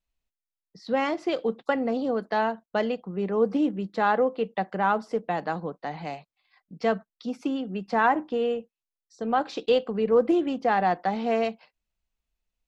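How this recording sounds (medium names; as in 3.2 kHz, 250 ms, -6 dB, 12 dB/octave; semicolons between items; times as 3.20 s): noise floor -90 dBFS; spectral tilt -4.0 dB/octave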